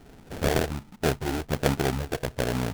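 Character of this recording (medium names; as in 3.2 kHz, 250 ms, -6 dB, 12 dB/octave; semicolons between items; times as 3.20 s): phasing stages 12, 1.3 Hz, lowest notch 170–3300 Hz; aliases and images of a low sample rate 1.1 kHz, jitter 20%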